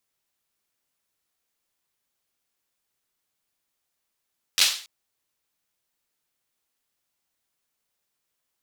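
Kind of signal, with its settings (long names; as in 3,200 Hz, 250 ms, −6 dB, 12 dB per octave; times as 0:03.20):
synth clap length 0.28 s, apart 11 ms, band 3,800 Hz, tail 0.44 s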